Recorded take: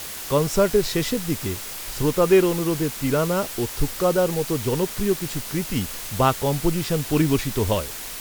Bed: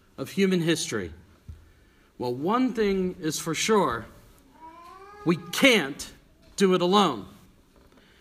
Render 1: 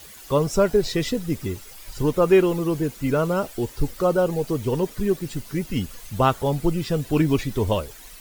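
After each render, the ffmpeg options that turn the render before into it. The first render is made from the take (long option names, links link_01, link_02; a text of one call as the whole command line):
ffmpeg -i in.wav -af "afftdn=noise_reduction=13:noise_floor=-34" out.wav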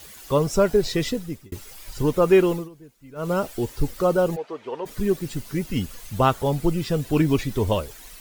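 ffmpeg -i in.wav -filter_complex "[0:a]asplit=3[link_01][link_02][link_03];[link_01]afade=type=out:start_time=4.35:duration=0.02[link_04];[link_02]highpass=610,lowpass=2400,afade=type=in:start_time=4.35:duration=0.02,afade=type=out:start_time=4.85:duration=0.02[link_05];[link_03]afade=type=in:start_time=4.85:duration=0.02[link_06];[link_04][link_05][link_06]amix=inputs=3:normalize=0,asplit=4[link_07][link_08][link_09][link_10];[link_07]atrim=end=1.52,asetpts=PTS-STARTPTS,afade=type=out:start_time=1.07:duration=0.45[link_11];[link_08]atrim=start=1.52:end=2.69,asetpts=PTS-STARTPTS,afade=type=in:duration=0.004:curve=hsin,afade=type=out:start_time=1:duration=0.17:silence=0.0794328[link_12];[link_09]atrim=start=2.69:end=3.15,asetpts=PTS-STARTPTS,volume=-22dB[link_13];[link_10]atrim=start=3.15,asetpts=PTS-STARTPTS,afade=type=in:duration=0.17:silence=0.0794328[link_14];[link_11][link_12][link_13][link_14]concat=n=4:v=0:a=1" out.wav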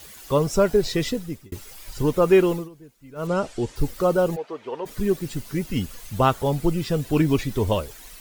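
ffmpeg -i in.wav -filter_complex "[0:a]asettb=1/sr,asplit=3[link_01][link_02][link_03];[link_01]atrim=end=3.274[link_04];[link_02]atrim=start=3.27:end=3.76,asetpts=PTS-STARTPTS,afade=type=in:duration=0.004:curve=qsin,afade=type=out:start_time=0.486:duration=0.004:curve=qsin,lowpass=frequency=8300:width=0.5412,lowpass=frequency=8300:width=1.3066[link_05];[link_03]atrim=start=3.756[link_06];[link_04][link_05]acrossfade=duration=0.004:curve1=hsin:curve2=qsin[link_07];[link_07][link_06]acrossfade=duration=0.004:curve1=qsin:curve2=hsin" out.wav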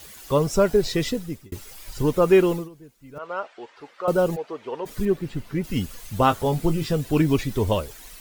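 ffmpeg -i in.wav -filter_complex "[0:a]asettb=1/sr,asplit=3[link_01][link_02][link_03];[link_01]atrim=end=3.184[link_04];[link_02]atrim=start=3.18:end=4.08,asetpts=PTS-STARTPTS,afade=type=in:duration=0.004:curve=qsin,afade=type=out:start_time=0.896:duration=0.004:curve=qsin,highpass=800,lowpass=2300[link_05];[link_03]atrim=start=4.076[link_06];[link_04][link_05]acrossfade=duration=0.004:curve1=hsin:curve2=qsin[link_07];[link_07][link_06]acrossfade=duration=0.004:curve1=qsin:curve2=hsin,asettb=1/sr,asplit=3[link_08][link_09][link_10];[link_08]atrim=end=5.054[link_11];[link_09]atrim=start=5.05:end=5.64,asetpts=PTS-STARTPTS,afade=type=in:duration=0.004:curve=qsin,afade=type=out:start_time=0.586:duration=0.004:curve=qsin,acrossover=split=3400[link_12][link_13];[link_13]acompressor=threshold=-55dB:ratio=4:attack=1:release=60[link_14];[link_12][link_14]amix=inputs=2:normalize=0[link_15];[link_10]atrim=start=5.636[link_16];[link_11][link_15]acrossfade=duration=0.004:curve1=hsin:curve2=qsin[link_17];[link_17][link_16]acrossfade=duration=0.004:curve1=qsin:curve2=hsin,asettb=1/sr,asplit=3[link_18][link_19][link_20];[link_18]atrim=end=6.194[link_21];[link_19]atrim=start=6.19:end=6.93,asetpts=PTS-STARTPTS,afade=type=in:duration=0.004:curve=qsin,afade=type=out:start_time=0.736:duration=0.004:curve=qsin,asplit=2[link_22][link_23];[link_23]adelay=19,volume=-8dB[link_24];[link_22][link_24]amix=inputs=2:normalize=0,atrim=end_sample=32634[link_25];[link_20]atrim=start=6.926[link_26];[link_21][link_25]acrossfade=duration=0.004:curve1=hsin:curve2=qsin[link_27];[link_27][link_26]acrossfade=duration=0.004:curve1=qsin:curve2=hsin" out.wav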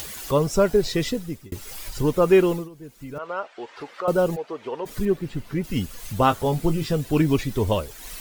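ffmpeg -i in.wav -af "acompressor=mode=upward:threshold=-27dB:ratio=2.5" out.wav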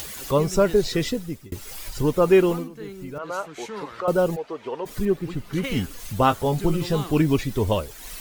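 ffmpeg -i in.wav -i bed.wav -filter_complex "[1:a]volume=-14dB[link_01];[0:a][link_01]amix=inputs=2:normalize=0" out.wav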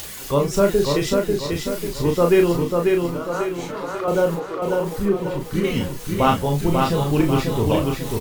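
ffmpeg -i in.wav -filter_complex "[0:a]asplit=2[link_01][link_02];[link_02]adelay=35,volume=-4dB[link_03];[link_01][link_03]amix=inputs=2:normalize=0,aecho=1:1:542|1084|1626|2168|2710|3252:0.668|0.294|0.129|0.0569|0.0251|0.011" out.wav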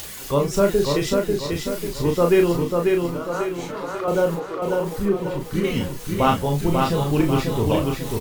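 ffmpeg -i in.wav -af "volume=-1dB" out.wav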